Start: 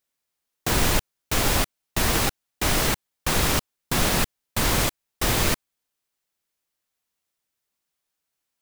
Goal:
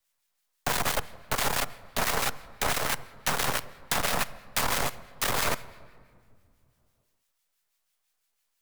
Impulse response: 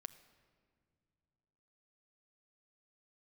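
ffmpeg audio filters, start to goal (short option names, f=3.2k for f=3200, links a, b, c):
-filter_complex "[0:a]equalizer=f=320:w=3.3:g=-13,aeval=exprs='max(val(0),0)':c=same,acrossover=split=150|410|1800[a][b][c][d];[a]acompressor=threshold=-36dB:ratio=4[e];[b]acompressor=threshold=-42dB:ratio=4[f];[c]acompressor=threshold=-35dB:ratio=4[g];[d]acompressor=threshold=-39dB:ratio=4[h];[e][f][g][h]amix=inputs=4:normalize=0,lowshelf=f=420:g=-7.5,asplit=2[i][j];[1:a]atrim=start_sample=2205,asetrate=40572,aresample=44100[k];[j][k]afir=irnorm=-1:irlink=0,volume=12.5dB[l];[i][l]amix=inputs=2:normalize=0,acrossover=split=1400[m][n];[m]aeval=exprs='val(0)*(1-0.5/2+0.5/2*cos(2*PI*6*n/s))':c=same[o];[n]aeval=exprs='val(0)*(1-0.5/2-0.5/2*cos(2*PI*6*n/s))':c=same[p];[o][p]amix=inputs=2:normalize=0"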